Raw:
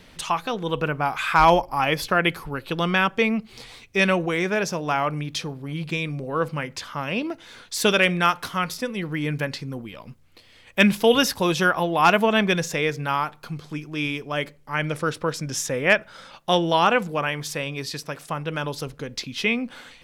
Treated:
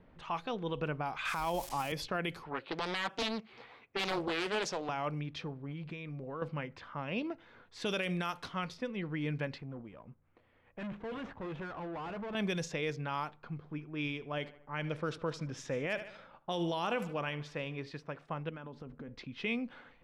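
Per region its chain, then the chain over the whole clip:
0:01.25–0:01.92: spike at every zero crossing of −22 dBFS + multiband upward and downward compressor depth 40%
0:02.43–0:04.89: high-pass filter 140 Hz 6 dB per octave + mid-hump overdrive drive 11 dB, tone 4,300 Hz, clips at −6 dBFS + highs frequency-modulated by the lows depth 0.69 ms
0:05.71–0:06.42: high-shelf EQ 4,200 Hz +9 dB + downward compressor 3 to 1, threshold −30 dBFS
0:09.58–0:12.35: running median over 9 samples + tube saturation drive 29 dB, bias 0.4 + one half of a high-frequency compander encoder only
0:13.58–0:17.92: repeating echo 75 ms, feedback 52%, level −18 dB + one half of a high-frequency compander decoder only
0:18.49–0:19.08: parametric band 240 Hz +13 dB 0.27 octaves + downward compressor 12 to 1, threshold −32 dBFS
whole clip: low-pass that shuts in the quiet parts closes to 1,100 Hz, open at −16 dBFS; dynamic equaliser 1,500 Hz, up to −4 dB, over −35 dBFS, Q 1.1; brickwall limiter −16 dBFS; level −9 dB

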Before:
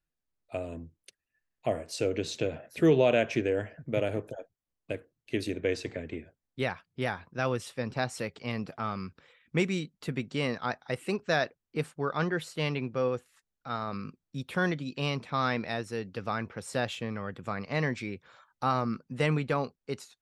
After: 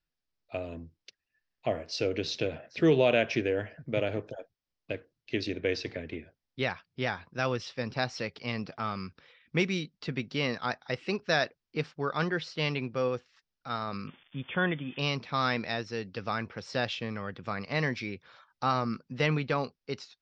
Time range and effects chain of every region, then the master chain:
0:14.07–0:14.99: spike at every zero crossing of −32.5 dBFS + linear-phase brick-wall low-pass 3,600 Hz
whole clip: elliptic low-pass filter 5,400 Hz, stop band 60 dB; high-shelf EQ 4,000 Hz +9.5 dB

